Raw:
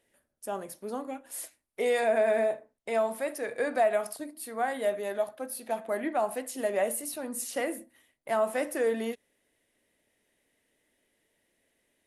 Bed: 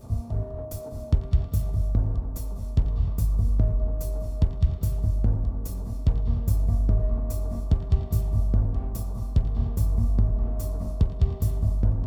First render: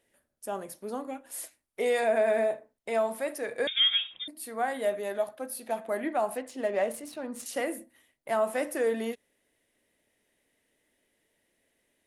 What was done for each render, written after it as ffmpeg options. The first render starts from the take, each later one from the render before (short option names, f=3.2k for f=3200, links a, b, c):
-filter_complex "[0:a]asettb=1/sr,asplit=3[a][b][c];[a]atrim=end=3.674[d];[b]atrim=start=3.67:end=4.28,asetpts=PTS-STARTPTS,afade=t=in:d=0.004:c=qsin,afade=t=out:st=0.606:d=0.004:c=qsin,lowpass=f=3.3k:t=q:w=0.5098,lowpass=f=3.3k:t=q:w=0.6013,lowpass=f=3.3k:t=q:w=0.9,lowpass=f=3.3k:t=q:w=2.563,afreqshift=-3900[e];[c]atrim=start=4.276[f];[d][e]acrossfade=d=0.004:c1=hsin:c2=qsin[g];[g][f]acrossfade=d=0.004:c1=qsin:c2=hsin,asettb=1/sr,asplit=3[h][i][j];[h]atrim=end=6.374[k];[i]atrim=start=6.37:end=7.46,asetpts=PTS-STARTPTS,afade=t=in:d=0.004:c=qsin,afade=t=out:st=1.086:d=0.004:c=qsin,adynamicsmooth=sensitivity=7.5:basefreq=3.8k[l];[j]atrim=start=7.456[m];[k][l]acrossfade=d=0.004:c1=hsin:c2=qsin[n];[n][m]acrossfade=d=0.004:c1=qsin:c2=hsin"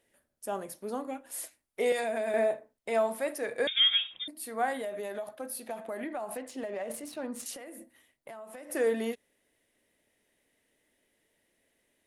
-filter_complex "[0:a]asettb=1/sr,asplit=3[a][b][c];[a]atrim=end=1.924[d];[b]atrim=start=1.92:end=2.34,asetpts=PTS-STARTPTS,afade=t=in:d=0.004:c=qsin,afade=t=out:st=0.416:d=0.004:c=qsin,acrossover=split=220|3000[e][f][g];[f]acompressor=threshold=-29dB:ratio=6:attack=3.2:release=140:knee=2.83:detection=peak[h];[e][h][g]amix=inputs=3:normalize=0[i];[c]atrim=start=2.336[j];[d][i]acrossfade=d=0.004:c1=hsin:c2=qsin[k];[k][j]acrossfade=d=0.004:c1=qsin:c2=hsin,asettb=1/sr,asplit=3[l][m][n];[l]atrim=end=4.814[o];[m]atrim=start=4.81:end=6.9,asetpts=PTS-STARTPTS,afade=t=in:d=0.004:c=qsin,afade=t=out:st=2.086:d=0.004:c=qsin,acompressor=threshold=-32dB:ratio=12:attack=3.2:release=140:knee=1:detection=peak[p];[n]atrim=start=6.896[q];[o][p]acrossfade=d=0.004:c1=hsin:c2=qsin[r];[r][q]acrossfade=d=0.004:c1=qsin:c2=hsin,asettb=1/sr,asplit=3[s][t][u];[s]atrim=end=7.544[v];[t]atrim=start=7.54:end=8.7,asetpts=PTS-STARTPTS,afade=t=in:d=0.004:c=qsin,afade=t=out:st=1.156:d=0.004:c=qsin,acompressor=threshold=-41dB:ratio=16:attack=3.2:release=140:knee=1:detection=peak[w];[u]atrim=start=8.696[x];[v][w]acrossfade=d=0.004:c1=hsin:c2=qsin[y];[y][x]acrossfade=d=0.004:c1=qsin:c2=hsin"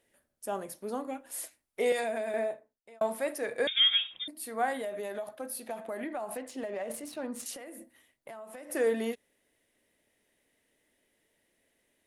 -filter_complex "[0:a]asplit=2[a][b];[a]atrim=end=3.01,asetpts=PTS-STARTPTS,afade=t=out:st=2.01:d=1[c];[b]atrim=start=3.01,asetpts=PTS-STARTPTS,afade=t=in:d=0.004:c=hsin[d];[c][d]concat=n=2:v=0:a=1"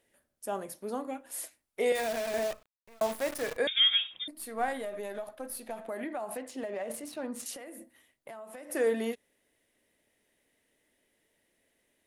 -filter_complex "[0:a]asettb=1/sr,asplit=3[a][b][c];[a]atrim=end=1.954[d];[b]atrim=start=1.95:end=3.57,asetpts=PTS-STARTPTS,afade=t=in:d=0.004:c=qsin,afade=t=out:st=1.616:d=0.004:c=qsin,acrusher=bits=7:dc=4:mix=0:aa=0.000001[e];[c]atrim=start=3.566[f];[d][e]acrossfade=d=0.004:c1=hsin:c2=qsin[g];[g][f]acrossfade=d=0.004:c1=qsin:c2=hsin,asettb=1/sr,asplit=3[h][i][j];[h]atrim=end=4.314[k];[i]atrim=start=4.31:end=5.88,asetpts=PTS-STARTPTS,afade=t=in:d=0.004:c=qsin,afade=t=out:st=1.566:d=0.004:c=qsin,aeval=exprs='if(lt(val(0),0),0.708*val(0),val(0))':c=same[l];[j]atrim=start=5.876[m];[k][l]acrossfade=d=0.004:c1=hsin:c2=qsin[n];[n][m]acrossfade=d=0.004:c1=qsin:c2=hsin"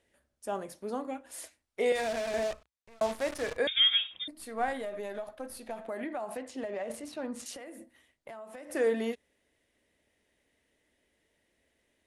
-af "lowpass=8.1k,equalizer=f=65:w=1.9:g=10.5"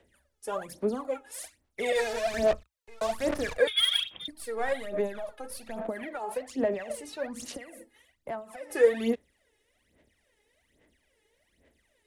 -filter_complex "[0:a]acrossover=split=130|400|2100[a][b][c][d];[d]asoftclip=type=tanh:threshold=-30dB[e];[a][b][c][e]amix=inputs=4:normalize=0,aphaser=in_gain=1:out_gain=1:delay=2.4:decay=0.75:speed=1.2:type=sinusoidal"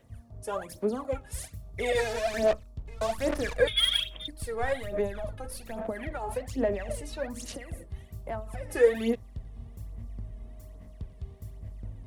-filter_complex "[1:a]volume=-18dB[a];[0:a][a]amix=inputs=2:normalize=0"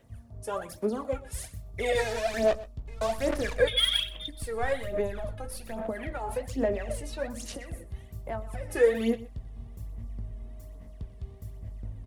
-filter_complex "[0:a]asplit=2[a][b];[b]adelay=18,volume=-13dB[c];[a][c]amix=inputs=2:normalize=0,aecho=1:1:125:0.119"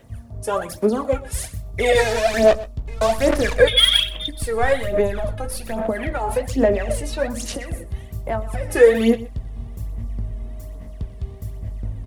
-af "volume=10.5dB,alimiter=limit=-2dB:level=0:latency=1"